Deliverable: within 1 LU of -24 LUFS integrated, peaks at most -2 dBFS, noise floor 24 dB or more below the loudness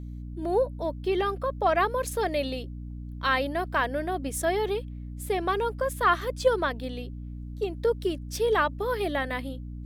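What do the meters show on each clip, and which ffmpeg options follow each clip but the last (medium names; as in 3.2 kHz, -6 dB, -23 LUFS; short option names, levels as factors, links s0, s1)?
hum 60 Hz; highest harmonic 300 Hz; hum level -35 dBFS; loudness -28.0 LUFS; peak level -10.5 dBFS; loudness target -24.0 LUFS
-> -af "bandreject=f=60:t=h:w=4,bandreject=f=120:t=h:w=4,bandreject=f=180:t=h:w=4,bandreject=f=240:t=h:w=4,bandreject=f=300:t=h:w=4"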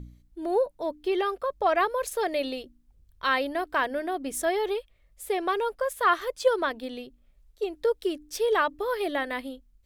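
hum not found; loudness -28.0 LUFS; peak level -10.5 dBFS; loudness target -24.0 LUFS
-> -af "volume=1.58"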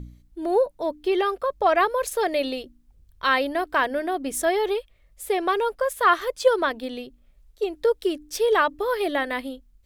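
loudness -24.0 LUFS; peak level -6.5 dBFS; noise floor -58 dBFS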